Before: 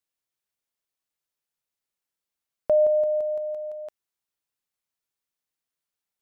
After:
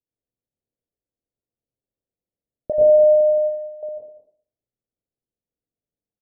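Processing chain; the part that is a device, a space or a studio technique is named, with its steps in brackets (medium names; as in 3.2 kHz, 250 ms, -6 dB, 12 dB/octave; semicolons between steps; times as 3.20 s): next room (low-pass 520 Hz 24 dB/octave; reverberation RT60 0.55 s, pre-delay 85 ms, DRR -4 dB); 2.72–3.83 s: gate -26 dBFS, range -14 dB; delay 197 ms -12.5 dB; trim +4 dB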